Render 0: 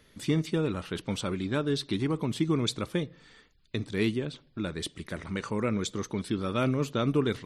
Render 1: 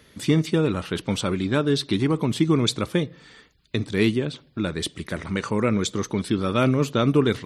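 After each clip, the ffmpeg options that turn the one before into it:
ffmpeg -i in.wav -af "highpass=48,volume=7dB" out.wav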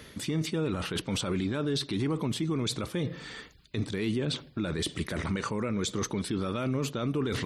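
ffmpeg -i in.wav -af "areverse,acompressor=threshold=-27dB:ratio=6,areverse,alimiter=level_in=3.5dB:limit=-24dB:level=0:latency=1:release=25,volume=-3.5dB,volume=6dB" out.wav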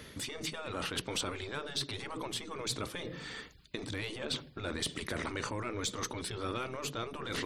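ffmpeg -i in.wav -af "aeval=exprs='0.0891*(cos(1*acos(clip(val(0)/0.0891,-1,1)))-cos(1*PI/2))+0.00355*(cos(4*acos(clip(val(0)/0.0891,-1,1)))-cos(4*PI/2))':channel_layout=same,afftfilt=real='re*lt(hypot(re,im),0.141)':imag='im*lt(hypot(re,im),0.141)':win_size=1024:overlap=0.75,volume=-1dB" out.wav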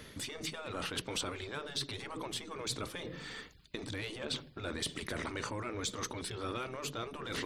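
ffmpeg -i in.wav -af "aeval=exprs='if(lt(val(0),0),0.708*val(0),val(0))':channel_layout=same" out.wav

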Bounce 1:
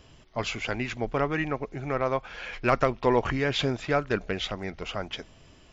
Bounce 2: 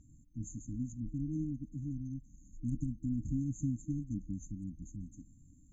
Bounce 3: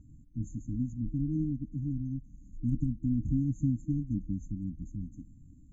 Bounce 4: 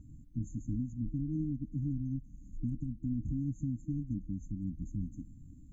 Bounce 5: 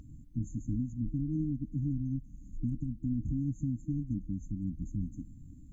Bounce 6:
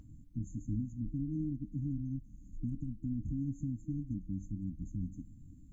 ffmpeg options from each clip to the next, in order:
ffmpeg -i in.wav -af "afftfilt=real='re*(1-between(b*sr/4096,320,6200))':imag='im*(1-between(b*sr/4096,320,6200))':win_size=4096:overlap=0.75,volume=-4dB" out.wav
ffmpeg -i in.wav -af "tiltshelf=frequency=970:gain=7.5,volume=-1dB" out.wav
ffmpeg -i in.wav -af "alimiter=level_in=4.5dB:limit=-24dB:level=0:latency=1:release=485,volume=-4.5dB,volume=2dB" out.wav
ffmpeg -i in.wav -af "acompressor=mode=upward:threshold=-55dB:ratio=2.5,volume=2dB" out.wav
ffmpeg -i in.wav -af "flanger=delay=9.3:depth=1.9:regen=84:speed=1.3:shape=triangular,volume=1dB" out.wav

